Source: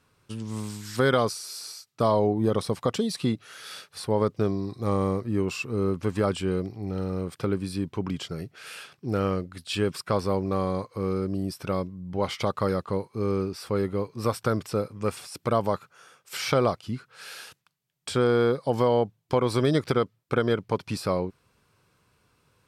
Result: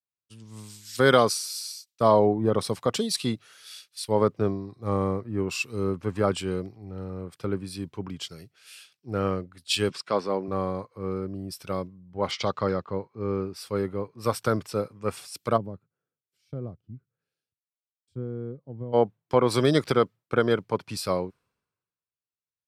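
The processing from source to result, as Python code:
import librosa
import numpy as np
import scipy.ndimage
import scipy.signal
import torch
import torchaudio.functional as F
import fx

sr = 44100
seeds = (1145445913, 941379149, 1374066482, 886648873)

y = fx.bandpass_edges(x, sr, low_hz=190.0, high_hz=5800.0, at=(9.89, 10.48))
y = fx.lowpass(y, sr, hz=6500.0, slope=24, at=(12.31, 13.45))
y = fx.curve_eq(y, sr, hz=(130.0, 320.0, 970.0), db=(0, -5, -23), at=(15.56, 18.92), fade=0.02)
y = fx.low_shelf(y, sr, hz=220.0, db=-3.5)
y = fx.band_widen(y, sr, depth_pct=100)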